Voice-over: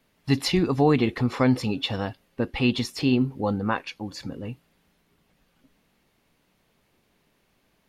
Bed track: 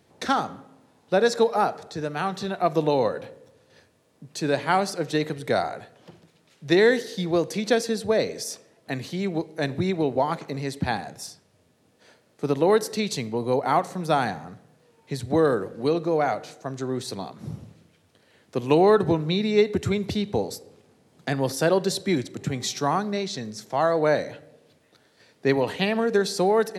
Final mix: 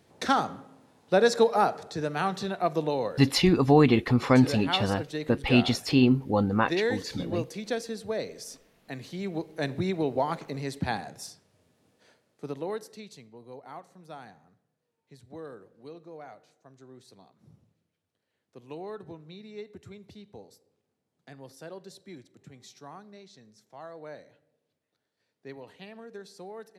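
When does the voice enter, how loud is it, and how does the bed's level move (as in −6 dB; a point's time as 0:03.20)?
2.90 s, +1.0 dB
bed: 0:02.30 −1 dB
0:03.27 −9.5 dB
0:08.84 −9.5 dB
0:09.61 −4 dB
0:11.88 −4 dB
0:13.29 −22 dB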